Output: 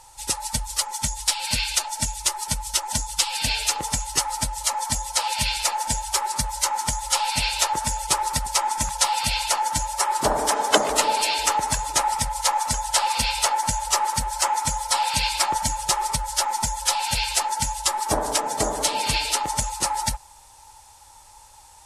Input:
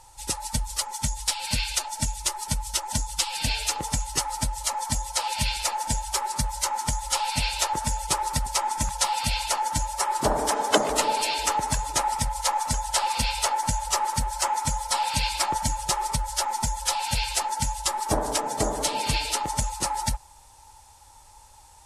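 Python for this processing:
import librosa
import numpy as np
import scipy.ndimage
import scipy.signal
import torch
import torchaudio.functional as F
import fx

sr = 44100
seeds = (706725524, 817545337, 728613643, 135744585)

y = fx.low_shelf(x, sr, hz=450.0, db=-6.0)
y = y * 10.0 ** (4.0 / 20.0)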